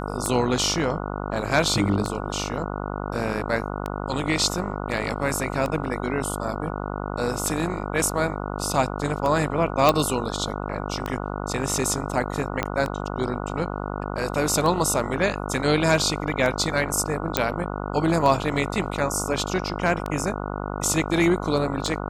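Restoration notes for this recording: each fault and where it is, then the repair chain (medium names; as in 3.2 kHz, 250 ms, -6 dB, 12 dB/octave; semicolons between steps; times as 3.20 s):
buzz 50 Hz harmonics 29 -30 dBFS
tick 33 1/3 rpm -14 dBFS
9.89 s: pop
12.63 s: pop -8 dBFS
17.37 s: pop -2 dBFS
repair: de-click; de-hum 50 Hz, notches 29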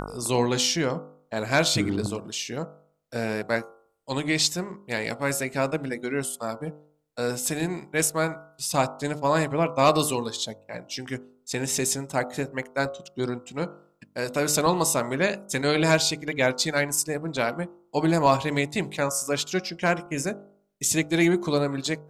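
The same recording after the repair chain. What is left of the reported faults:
12.63 s: pop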